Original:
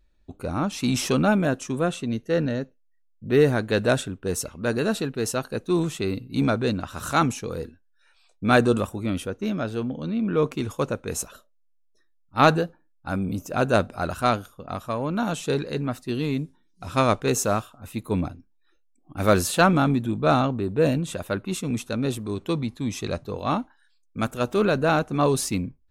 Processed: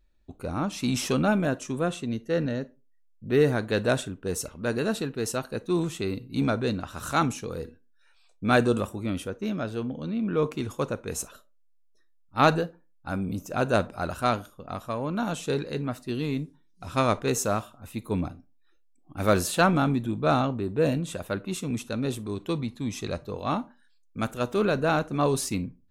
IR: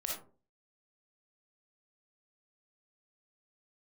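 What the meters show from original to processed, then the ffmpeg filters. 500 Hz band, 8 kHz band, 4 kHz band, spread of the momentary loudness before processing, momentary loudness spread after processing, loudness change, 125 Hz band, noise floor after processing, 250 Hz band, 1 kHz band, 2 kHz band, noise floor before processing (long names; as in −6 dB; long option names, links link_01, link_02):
−3.0 dB, −3.0 dB, −3.0 dB, 12 LU, 12 LU, −3.0 dB, −3.0 dB, −60 dBFS, −3.0 dB, −3.0 dB, −3.0 dB, −63 dBFS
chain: -filter_complex "[0:a]asplit=2[link_01][link_02];[1:a]atrim=start_sample=2205,asetrate=66150,aresample=44100[link_03];[link_02][link_03]afir=irnorm=-1:irlink=0,volume=-13dB[link_04];[link_01][link_04]amix=inputs=2:normalize=0,volume=-4dB"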